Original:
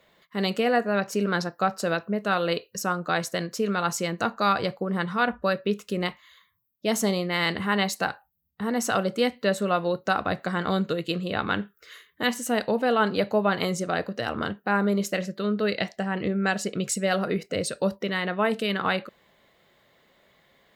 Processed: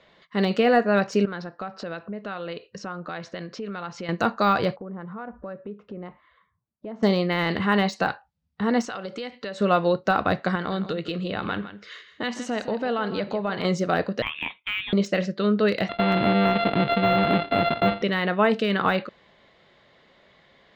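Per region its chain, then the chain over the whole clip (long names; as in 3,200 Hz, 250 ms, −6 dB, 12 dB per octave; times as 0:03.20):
0:01.25–0:04.09: low-pass filter 3,800 Hz + downward compressor 3 to 1, threshold −38 dBFS
0:04.76–0:07.03: low-pass filter 1,100 Hz + downward compressor 3 to 1, threshold −42 dBFS
0:08.85–0:09.61: low-shelf EQ 260 Hz −9 dB + notch filter 650 Hz, Q 8.8 + downward compressor 12 to 1, threshold −33 dBFS
0:10.55–0:13.65: downward compressor 2.5 to 1, threshold −31 dBFS + single-tap delay 161 ms −12.5 dB
0:14.22–0:14.93: high-pass filter 1,100 Hz + voice inversion scrambler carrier 3,900 Hz
0:15.89–0:18.02: samples sorted by size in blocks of 64 samples + Chebyshev low-pass filter 4,100 Hz, order 6 + envelope flattener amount 50%
whole clip: low-pass filter 5,600 Hz 24 dB per octave; de-essing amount 95%; level +4.5 dB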